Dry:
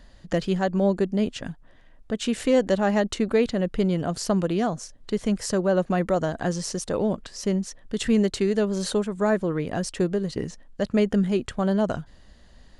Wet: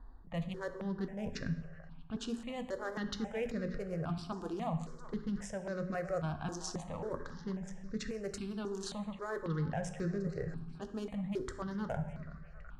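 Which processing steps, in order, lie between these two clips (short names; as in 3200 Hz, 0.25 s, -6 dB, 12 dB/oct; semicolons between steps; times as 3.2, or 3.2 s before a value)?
Wiener smoothing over 15 samples; low-pass opened by the level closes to 2300 Hz, open at -18.5 dBFS; bell 310 Hz -5.5 dB 1.6 oct; notches 60/120/180/240/300/360/420 Hz; reverse; compressor, threshold -33 dBFS, peak gain reduction 13.5 dB; reverse; delay with a stepping band-pass 0.373 s, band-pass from 940 Hz, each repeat 0.7 oct, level -10 dB; on a send at -7.5 dB: reverb RT60 1.1 s, pre-delay 3 ms; on the sum: step phaser 3.7 Hz 570–3100 Hz; gain +1 dB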